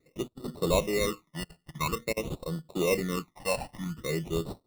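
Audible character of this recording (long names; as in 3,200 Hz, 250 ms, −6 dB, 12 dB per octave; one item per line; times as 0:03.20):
aliases and images of a low sample rate 1,600 Hz, jitter 0%
phaser sweep stages 12, 0.49 Hz, lowest notch 370–2,300 Hz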